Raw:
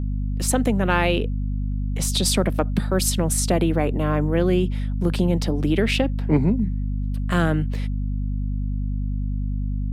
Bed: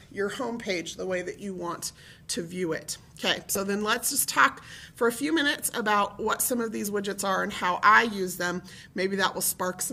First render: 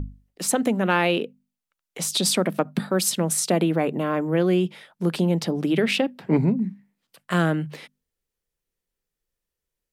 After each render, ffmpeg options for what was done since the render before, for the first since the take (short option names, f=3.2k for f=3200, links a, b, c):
-af "bandreject=f=50:t=h:w=6,bandreject=f=100:t=h:w=6,bandreject=f=150:t=h:w=6,bandreject=f=200:t=h:w=6,bandreject=f=250:t=h:w=6"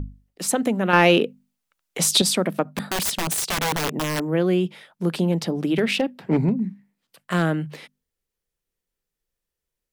-filter_complex "[0:a]asettb=1/sr,asplit=3[a][b][c];[a]atrim=end=0.934[d];[b]atrim=start=0.93:end=2.22,asetpts=PTS-STARTPTS,afade=t=in:d=0.004:c=qsin,afade=t=out:st=1.286:d=0.004:c=qsin,acontrast=74[e];[c]atrim=start=2.216[f];[d][e]acrossfade=d=0.004:c1=hsin:c2=qsin[g];[g][f]acrossfade=d=0.004:c1=qsin:c2=hsin,asplit=3[h][i][j];[h]afade=t=out:st=2.77:d=0.02[k];[i]aeval=exprs='(mod(7.5*val(0)+1,2)-1)/7.5':c=same,afade=t=in:st=2.77:d=0.02,afade=t=out:st=4.19:d=0.02[l];[j]afade=t=in:st=4.19:d=0.02[m];[k][l][m]amix=inputs=3:normalize=0,asettb=1/sr,asplit=3[n][o][p];[n]atrim=end=5.324[q];[o]atrim=start=5.32:end=7.43,asetpts=PTS-STARTPTS,afade=t=in:d=0.004:c=qsin,afade=t=out:st=2.106:d=0.004:c=qsin,volume=12.5dB,asoftclip=hard,volume=-12.5dB[r];[p]atrim=start=7.426[s];[q][r]acrossfade=d=0.004:c1=hsin:c2=qsin[t];[t][s]acrossfade=d=0.004:c1=qsin:c2=hsin"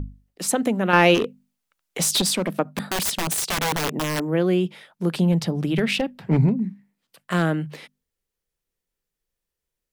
-filter_complex "[0:a]asplit=3[a][b][c];[a]afade=t=out:st=1.14:d=0.02[d];[b]asoftclip=type=hard:threshold=-17dB,afade=t=in:st=1.14:d=0.02,afade=t=out:st=2.52:d=0.02[e];[c]afade=t=in:st=2.52:d=0.02[f];[d][e][f]amix=inputs=3:normalize=0,asplit=3[g][h][i];[g]afade=t=out:st=5.15:d=0.02[j];[h]asubboost=boost=5:cutoff=130,afade=t=in:st=5.15:d=0.02,afade=t=out:st=6.46:d=0.02[k];[i]afade=t=in:st=6.46:d=0.02[l];[j][k][l]amix=inputs=3:normalize=0"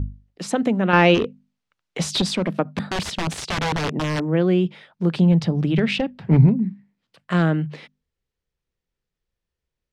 -af "lowpass=4.9k,equalizer=f=84:w=0.65:g=8"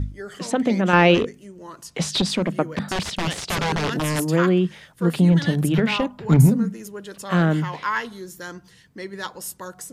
-filter_complex "[1:a]volume=-6.5dB[a];[0:a][a]amix=inputs=2:normalize=0"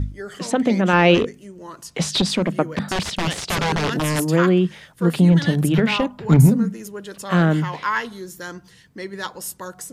-af "volume=2dB,alimiter=limit=-3dB:level=0:latency=1"